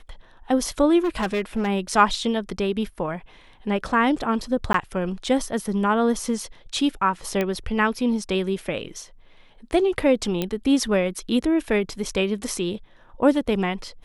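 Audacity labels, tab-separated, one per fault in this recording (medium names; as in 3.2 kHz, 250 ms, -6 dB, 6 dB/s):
1.040000	1.680000	clipped -19.5 dBFS
4.730000	4.740000	dropout 13 ms
7.410000	7.410000	pop -11 dBFS
10.420000	10.420000	pop -11 dBFS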